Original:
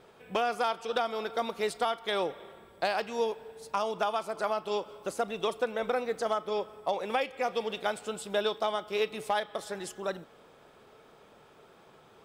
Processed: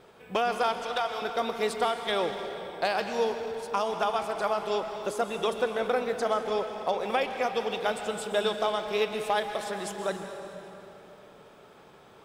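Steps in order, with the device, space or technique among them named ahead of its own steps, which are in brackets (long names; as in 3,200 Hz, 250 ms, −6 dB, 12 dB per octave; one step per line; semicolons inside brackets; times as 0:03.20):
0:00.76–0:01.22: high-pass filter 640 Hz 12 dB per octave
saturated reverb return (on a send at −4 dB: convolution reverb RT60 3.0 s, pre-delay 117 ms + soft clipping −29 dBFS, distortion −13 dB)
on the sum: level +2 dB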